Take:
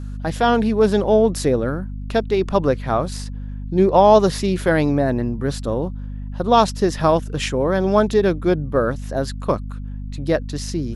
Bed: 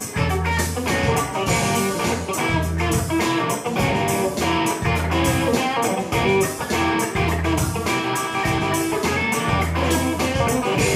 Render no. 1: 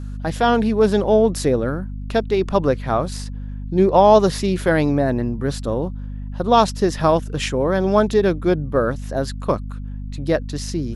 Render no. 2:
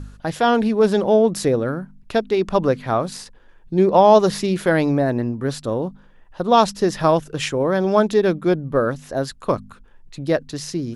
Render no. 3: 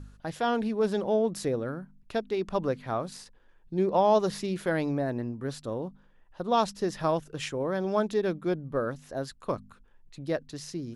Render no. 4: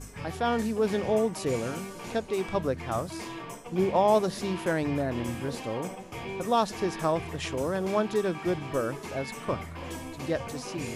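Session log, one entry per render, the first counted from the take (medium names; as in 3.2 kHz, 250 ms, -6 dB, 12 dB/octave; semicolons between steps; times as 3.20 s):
no audible change
de-hum 50 Hz, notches 5
trim -10.5 dB
add bed -18.5 dB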